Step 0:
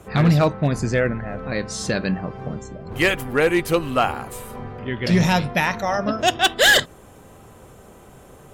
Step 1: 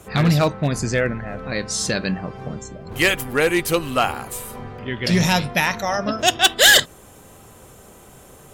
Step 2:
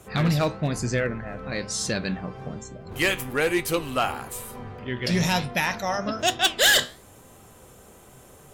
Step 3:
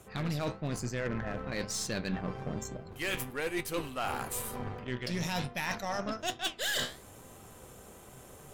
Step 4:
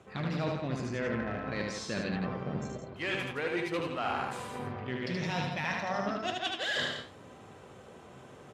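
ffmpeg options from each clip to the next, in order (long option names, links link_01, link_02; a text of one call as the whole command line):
ffmpeg -i in.wav -af "highshelf=frequency=3100:gain=9,volume=-1dB" out.wav
ffmpeg -i in.wav -af "flanger=delay=7.8:depth=8.5:regen=76:speed=1.1:shape=sinusoidal,asoftclip=type=tanh:threshold=-10.5dB" out.wav
ffmpeg -i in.wav -af "areverse,acompressor=threshold=-31dB:ratio=16,areverse,aeval=exprs='0.0708*(cos(1*acos(clip(val(0)/0.0708,-1,1)))-cos(1*PI/2))+0.00398*(cos(5*acos(clip(val(0)/0.0708,-1,1)))-cos(5*PI/2))+0.00447*(cos(6*acos(clip(val(0)/0.0708,-1,1)))-cos(6*PI/2))+0.00501*(cos(7*acos(clip(val(0)/0.0708,-1,1)))-cos(7*PI/2))':channel_layout=same" out.wav
ffmpeg -i in.wav -af "highpass=100,lowpass=3800,aecho=1:1:75.8|166.2:0.708|0.447" out.wav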